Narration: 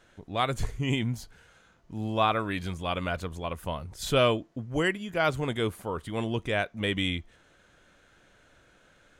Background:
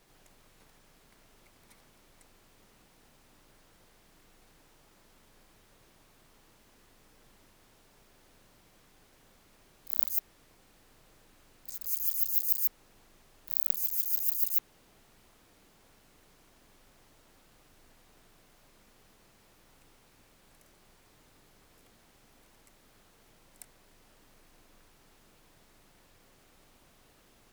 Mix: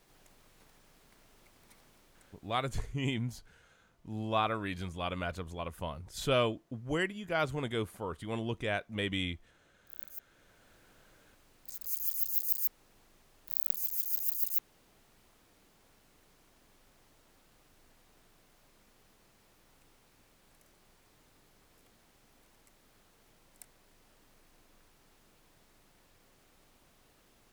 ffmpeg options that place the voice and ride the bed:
-filter_complex "[0:a]adelay=2150,volume=-5.5dB[a];[1:a]volume=12.5dB,afade=t=out:st=1.94:d=0.96:silence=0.16788,afade=t=in:st=10.14:d=0.61:silence=0.211349[b];[a][b]amix=inputs=2:normalize=0"

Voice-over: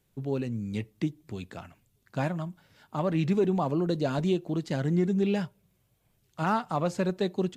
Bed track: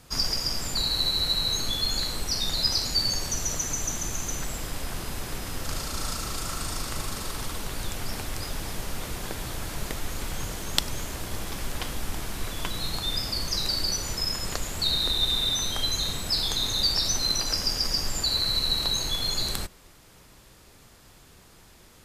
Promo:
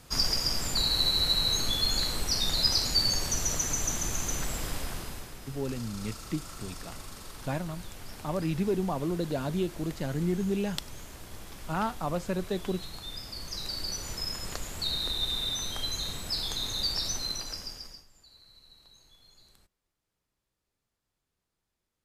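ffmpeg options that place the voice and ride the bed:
-filter_complex "[0:a]adelay=5300,volume=-3.5dB[a];[1:a]volume=5dB,afade=t=out:st=4.7:d=0.63:silence=0.281838,afade=t=in:st=13.27:d=0.87:silence=0.530884,afade=t=out:st=17.06:d=1:silence=0.0530884[b];[a][b]amix=inputs=2:normalize=0"

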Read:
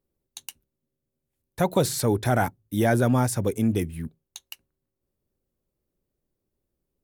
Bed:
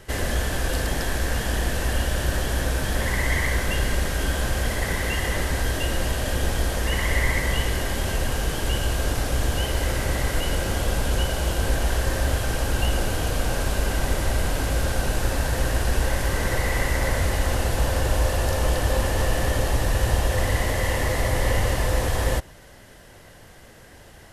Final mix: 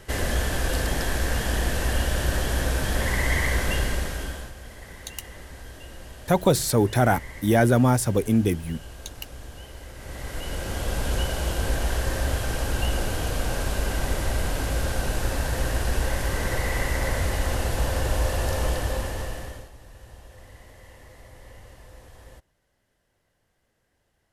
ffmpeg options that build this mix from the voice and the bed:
-filter_complex "[0:a]adelay=4700,volume=2.5dB[a];[1:a]volume=14.5dB,afade=t=out:st=3.72:d=0.81:silence=0.141254,afade=t=in:st=9.95:d=1.15:silence=0.177828,afade=t=out:st=18.61:d=1.09:silence=0.0749894[b];[a][b]amix=inputs=2:normalize=0"

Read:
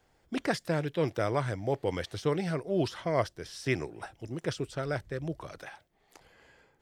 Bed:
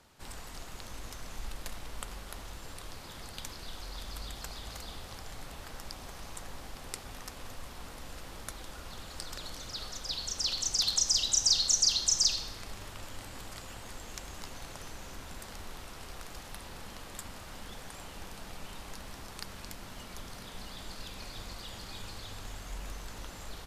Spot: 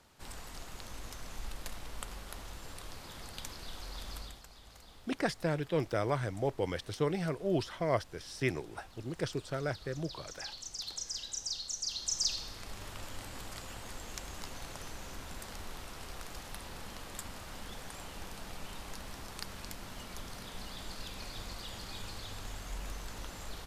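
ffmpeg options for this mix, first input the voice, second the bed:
-filter_complex "[0:a]adelay=4750,volume=-2.5dB[a];[1:a]volume=11dB,afade=t=out:st=4.14:d=0.29:silence=0.281838,afade=t=in:st=11.81:d=1.12:silence=0.237137[b];[a][b]amix=inputs=2:normalize=0"

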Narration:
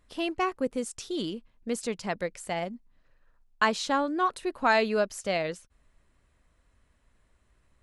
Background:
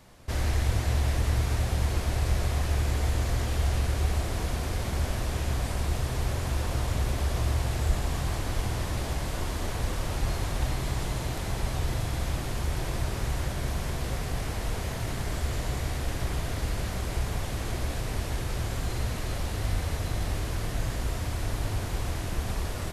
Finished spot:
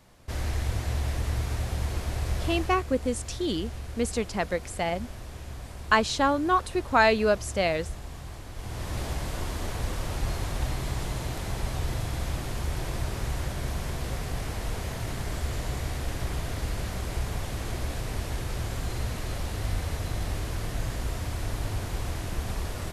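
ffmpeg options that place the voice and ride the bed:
-filter_complex "[0:a]adelay=2300,volume=3dB[a];[1:a]volume=7dB,afade=t=out:st=2.52:d=0.33:silence=0.398107,afade=t=in:st=8.55:d=0.45:silence=0.316228[b];[a][b]amix=inputs=2:normalize=0"

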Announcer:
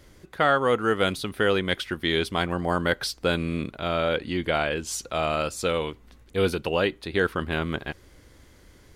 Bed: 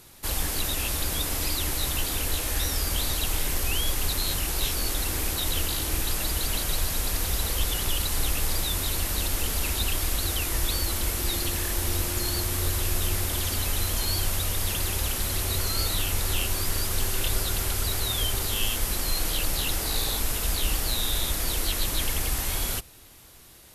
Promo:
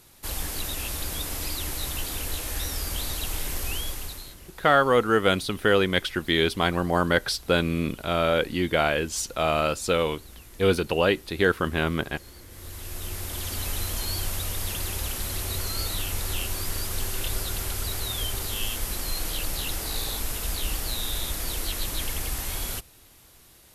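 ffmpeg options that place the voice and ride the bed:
-filter_complex "[0:a]adelay=4250,volume=2dB[a];[1:a]volume=15dB,afade=t=out:st=3.71:d=0.65:silence=0.125893,afade=t=in:st=12.48:d=1.19:silence=0.11885[b];[a][b]amix=inputs=2:normalize=0"

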